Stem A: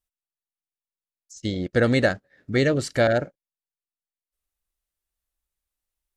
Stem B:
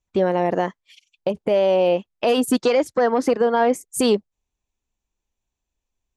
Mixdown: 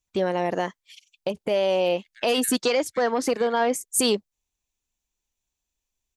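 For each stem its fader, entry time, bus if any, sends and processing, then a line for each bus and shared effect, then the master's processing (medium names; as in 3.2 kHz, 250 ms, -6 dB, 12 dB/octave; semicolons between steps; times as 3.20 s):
-13.0 dB, 0.40 s, no send, steep high-pass 1.8 kHz 36 dB/octave; random-step tremolo
-5.5 dB, 0.00 s, no send, treble shelf 2.3 kHz +11 dB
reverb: none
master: none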